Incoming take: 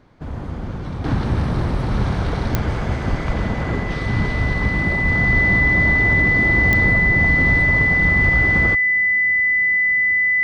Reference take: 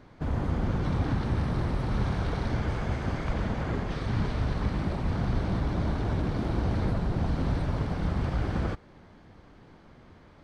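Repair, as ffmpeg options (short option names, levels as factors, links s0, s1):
-filter_complex "[0:a]adeclick=t=4,bandreject=f=2000:w=30,asplit=3[s0][s1][s2];[s0]afade=t=out:st=3.09:d=0.02[s3];[s1]highpass=f=140:w=0.5412,highpass=f=140:w=1.3066,afade=t=in:st=3.09:d=0.02,afade=t=out:st=3.21:d=0.02[s4];[s2]afade=t=in:st=3.21:d=0.02[s5];[s3][s4][s5]amix=inputs=3:normalize=0,asplit=3[s6][s7][s8];[s6]afade=t=out:st=8.24:d=0.02[s9];[s7]highpass=f=140:w=0.5412,highpass=f=140:w=1.3066,afade=t=in:st=8.24:d=0.02,afade=t=out:st=8.36:d=0.02[s10];[s8]afade=t=in:st=8.36:d=0.02[s11];[s9][s10][s11]amix=inputs=3:normalize=0,asetnsamples=n=441:p=0,asendcmd='1.04 volume volume -8dB',volume=1"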